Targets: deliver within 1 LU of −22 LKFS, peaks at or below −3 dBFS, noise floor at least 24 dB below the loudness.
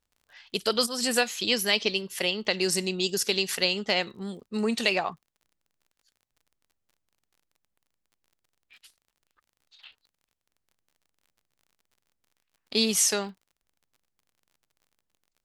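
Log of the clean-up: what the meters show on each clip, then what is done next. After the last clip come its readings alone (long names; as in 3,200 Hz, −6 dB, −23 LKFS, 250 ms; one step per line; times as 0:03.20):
crackle rate 37 per second; integrated loudness −26.0 LKFS; sample peak −7.5 dBFS; target loudness −22.0 LKFS
→ click removal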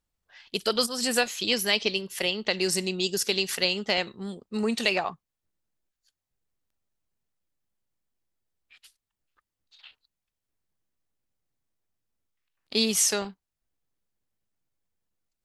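crackle rate 0.13 per second; integrated loudness −26.0 LKFS; sample peak −7.5 dBFS; target loudness −22.0 LKFS
→ level +4 dB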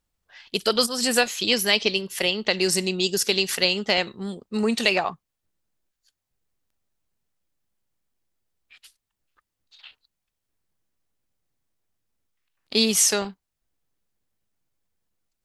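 integrated loudness −22.0 LKFS; sample peak −3.5 dBFS; background noise floor −82 dBFS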